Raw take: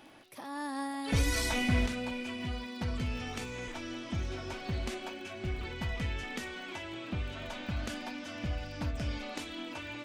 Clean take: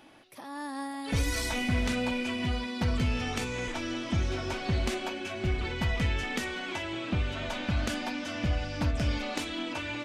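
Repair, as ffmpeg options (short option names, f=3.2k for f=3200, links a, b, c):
-af "adeclick=t=4,asetnsamples=n=441:p=0,asendcmd='1.86 volume volume 6.5dB',volume=0dB"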